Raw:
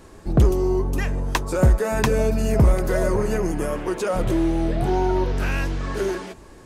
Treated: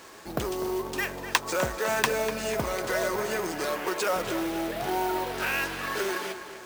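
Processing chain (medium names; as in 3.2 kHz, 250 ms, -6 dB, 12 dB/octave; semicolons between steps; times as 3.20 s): in parallel at +3 dB: compression, threshold -26 dBFS, peak gain reduction 13.5 dB; on the sum: careless resampling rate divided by 3×, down none, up hold; high-pass 1.5 kHz 6 dB/octave; on a send: tape echo 248 ms, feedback 49%, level -10 dB, low-pass 4 kHz; on the sum: companded quantiser 4-bit; treble shelf 7.6 kHz -7.5 dB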